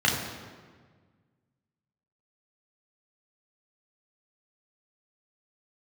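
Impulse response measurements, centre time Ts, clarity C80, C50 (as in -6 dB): 55 ms, 5.5 dB, 4.0 dB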